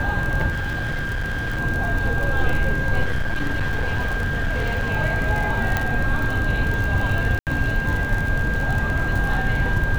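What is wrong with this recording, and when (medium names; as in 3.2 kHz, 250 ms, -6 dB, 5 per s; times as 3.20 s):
crackle 44 per s -24 dBFS
whine 1.6 kHz -25 dBFS
0.50–1.60 s: clipped -21.5 dBFS
3.04–4.91 s: clipped -18.5 dBFS
5.77 s: pop -7 dBFS
7.39–7.47 s: dropout 78 ms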